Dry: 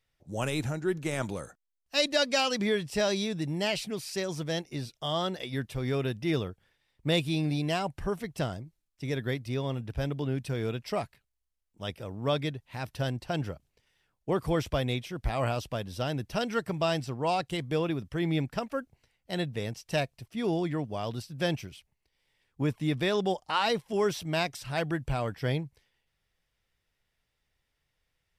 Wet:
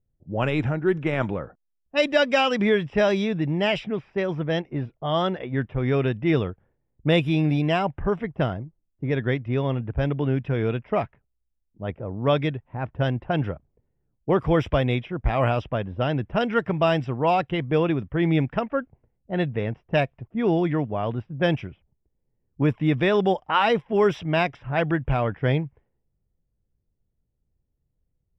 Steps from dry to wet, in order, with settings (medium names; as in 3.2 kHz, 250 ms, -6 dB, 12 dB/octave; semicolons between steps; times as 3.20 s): vibrato 4.6 Hz 14 cents; level-controlled noise filter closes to 300 Hz, open at -24 dBFS; Savitzky-Golay filter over 25 samples; trim +7.5 dB